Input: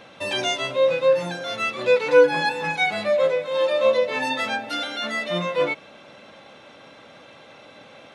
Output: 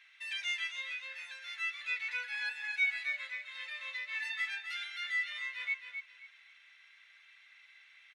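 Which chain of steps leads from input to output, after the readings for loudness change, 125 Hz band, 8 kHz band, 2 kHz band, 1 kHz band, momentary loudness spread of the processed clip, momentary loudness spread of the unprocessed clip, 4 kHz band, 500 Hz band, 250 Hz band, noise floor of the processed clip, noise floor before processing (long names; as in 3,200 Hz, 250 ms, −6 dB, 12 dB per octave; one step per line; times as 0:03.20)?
−14.0 dB, below −40 dB, −15.0 dB, −7.5 dB, −26.0 dB, 12 LU, 9 LU, −12.5 dB, below −40 dB, below −40 dB, −62 dBFS, −48 dBFS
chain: four-pole ladder high-pass 1,800 Hz, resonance 65%
on a send: repeating echo 265 ms, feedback 24%, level −7.5 dB
on the sum: level −5 dB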